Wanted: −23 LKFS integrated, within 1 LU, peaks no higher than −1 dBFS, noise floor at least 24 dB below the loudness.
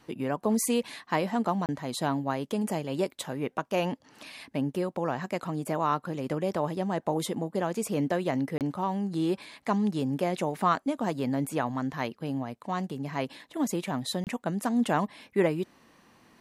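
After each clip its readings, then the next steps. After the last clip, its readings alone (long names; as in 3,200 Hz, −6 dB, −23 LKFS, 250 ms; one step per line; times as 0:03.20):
number of dropouts 3; longest dropout 28 ms; integrated loudness −30.0 LKFS; sample peak −12.0 dBFS; target loudness −23.0 LKFS
→ repair the gap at 0:01.66/0:08.58/0:14.24, 28 ms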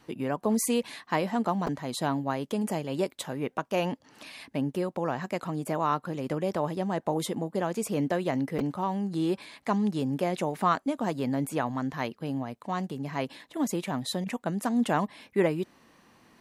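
number of dropouts 0; integrated loudness −30.0 LKFS; sample peak −12.0 dBFS; target loudness −23.0 LKFS
→ level +7 dB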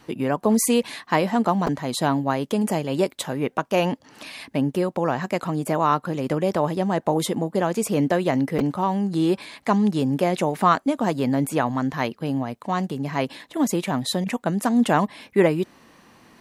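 integrated loudness −23.0 LKFS; sample peak −5.0 dBFS; background noise floor −56 dBFS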